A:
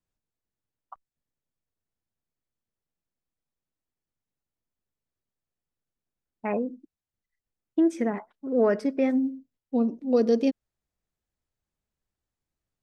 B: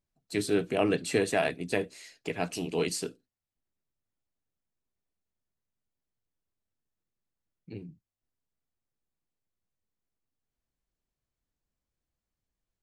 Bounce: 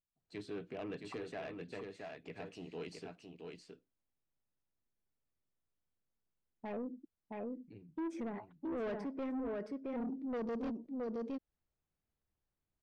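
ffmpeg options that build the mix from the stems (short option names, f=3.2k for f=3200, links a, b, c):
-filter_complex "[0:a]aemphasis=mode=reproduction:type=75kf,adelay=200,volume=-3.5dB,asplit=2[a][b];[b]volume=-4.5dB[c];[1:a]lowpass=3.7k,asoftclip=type=tanh:threshold=-19dB,volume=-13.5dB,asplit=2[d][e];[e]volume=-5.5dB[f];[c][f]amix=inputs=2:normalize=0,aecho=0:1:669:1[g];[a][d][g]amix=inputs=3:normalize=0,asoftclip=type=tanh:threshold=-28dB,alimiter=level_in=11.5dB:limit=-24dB:level=0:latency=1:release=112,volume=-11.5dB"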